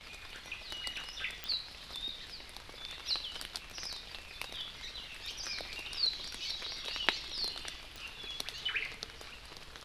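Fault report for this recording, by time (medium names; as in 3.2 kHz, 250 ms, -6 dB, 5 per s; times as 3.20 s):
1.44 s: pop
7.96 s: pop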